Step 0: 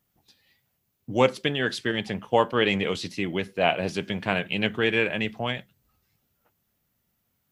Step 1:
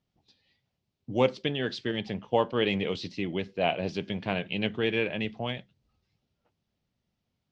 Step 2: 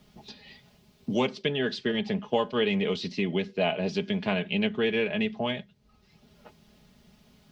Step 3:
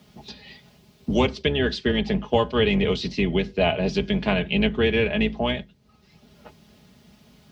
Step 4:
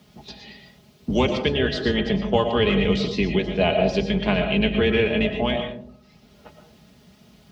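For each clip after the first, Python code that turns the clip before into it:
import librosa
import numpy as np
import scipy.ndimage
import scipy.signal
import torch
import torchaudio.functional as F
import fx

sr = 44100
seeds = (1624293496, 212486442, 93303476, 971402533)

y1 = scipy.signal.sosfilt(scipy.signal.butter(4, 5200.0, 'lowpass', fs=sr, output='sos'), x)
y1 = fx.peak_eq(y1, sr, hz=1500.0, db=-7.0, octaves=1.3)
y1 = y1 * 10.0 ** (-2.5 / 20.0)
y2 = y1 + 0.63 * np.pad(y1, (int(4.8 * sr / 1000.0), 0))[:len(y1)]
y2 = fx.band_squash(y2, sr, depth_pct=70)
y3 = fx.octave_divider(y2, sr, octaves=2, level_db=-2.0)
y3 = scipy.signal.sosfilt(scipy.signal.butter(4, 62.0, 'highpass', fs=sr, output='sos'), y3)
y3 = y3 * 10.0 ** (5.0 / 20.0)
y4 = fx.rev_freeverb(y3, sr, rt60_s=0.6, hf_ratio=0.3, predelay_ms=75, drr_db=5.0)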